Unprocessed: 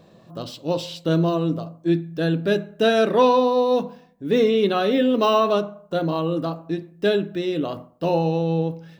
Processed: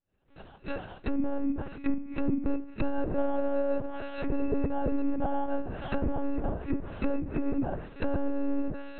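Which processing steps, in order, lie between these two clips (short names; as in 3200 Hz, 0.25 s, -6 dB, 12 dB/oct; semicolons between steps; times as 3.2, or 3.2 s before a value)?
opening faded in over 2.17 s; swung echo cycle 1.008 s, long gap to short 1.5:1, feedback 32%, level -18.5 dB; compressor 6:1, threshold -22 dBFS, peak gain reduction 10 dB; sample-and-hold 20×; formant-preserving pitch shift -10.5 st; monotone LPC vocoder at 8 kHz 280 Hz; treble ducked by the level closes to 700 Hz, closed at -24.5 dBFS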